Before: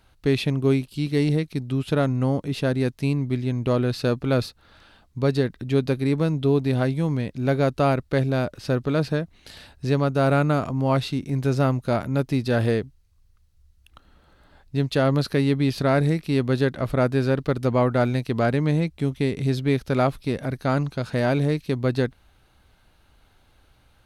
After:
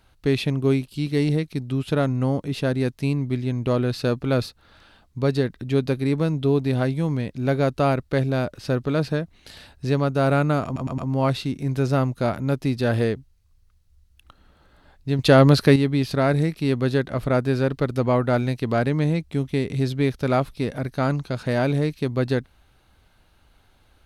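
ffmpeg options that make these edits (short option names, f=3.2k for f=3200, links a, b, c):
-filter_complex "[0:a]asplit=6[a][b][c][d][e][f];[a]atrim=end=10.762[g];[b]atrim=start=10.648:end=10.762[h];[c]atrim=start=10.648:end=10.762[i];[d]atrim=start=10.648:end=14.862[j];[e]atrim=start=14.858:end=15.432,asetpts=PTS-STARTPTS,volume=7dB[k];[f]atrim=start=15.428[l];[g][h]acrossfade=d=0.004:c1=hsin:c2=hsin[m];[m][i]acrossfade=d=0.004:c1=hsin:c2=hsin[n];[n][j]acrossfade=d=0.004:c1=hsin:c2=hsin[o];[o][k]acrossfade=d=0.004:c1=hsin:c2=hsin[p];[p][l]acrossfade=d=0.004:c1=hsin:c2=hsin"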